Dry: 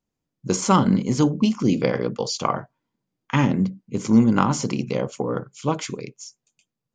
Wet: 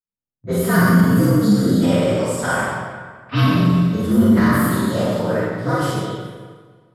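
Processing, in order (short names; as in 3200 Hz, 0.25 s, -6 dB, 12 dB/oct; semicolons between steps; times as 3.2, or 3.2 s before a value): inharmonic rescaling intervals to 118%; gate with hold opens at -39 dBFS; Schroeder reverb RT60 1.6 s, combs from 31 ms, DRR -7.5 dB; in parallel at +2 dB: limiter -11.5 dBFS, peak gain reduction 10 dB; on the sum: low-pass opened by the level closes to 2200 Hz, open at -7 dBFS; gain -5.5 dB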